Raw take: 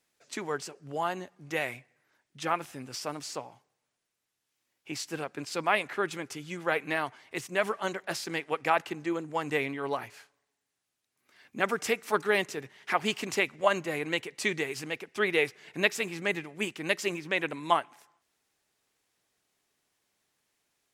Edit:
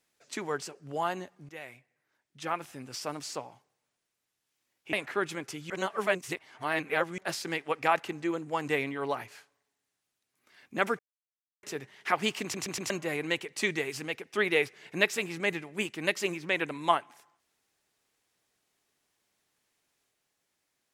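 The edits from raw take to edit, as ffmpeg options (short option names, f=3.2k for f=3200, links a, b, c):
-filter_complex "[0:a]asplit=11[a][b][c][d][e][f][g][h][i][j][k];[a]atrim=end=1.49,asetpts=PTS-STARTPTS,afade=t=out:st=1.486:d=0.004:c=hsin:silence=0.177828[l];[b]atrim=start=1.49:end=4.932,asetpts=PTS-STARTPTS,afade=t=in:d=1.68:silence=0.177828[m];[c]atrim=start=5.748:end=6.522[n];[d]atrim=start=6.518:end=8.002,asetpts=PTS-STARTPTS,areverse[o];[e]atrim=start=7.998:end=11.81,asetpts=PTS-STARTPTS,afade=t=out:st=3.808:d=0.004:c=hsin[p];[f]atrim=start=11.81:end=12.45,asetpts=PTS-STARTPTS,volume=0[q];[g]atrim=start=12.45:end=13.362,asetpts=PTS-STARTPTS,afade=t=in:d=0.004:c=hsin[r];[h]atrim=start=13.238:end=13.362[s];[i]atrim=start=13.238:end=13.362[t];[j]atrim=start=13.238:end=13.362[u];[k]atrim=start=13.718[v];[l][m]concat=n=2:v=0:a=1[w];[w][n]acrossfade=d=0.004:c1=hsin:c2=hsin[x];[x][o]acrossfade=d=0.004:c1=hsin:c2=hsin[y];[p][q][r]concat=n=3:v=0:a=1[z];[y][z]acrossfade=d=0.004:c1=hsin:c2=hsin[aa];[aa][s]acrossfade=d=0.004:c1=hsin:c2=hsin[ab];[ab][t]acrossfade=d=0.004:c1=hsin:c2=hsin[ac];[ac][u]acrossfade=d=0.004:c1=hsin:c2=hsin[ad];[ad][v]acrossfade=d=0.004:c1=hsin:c2=hsin"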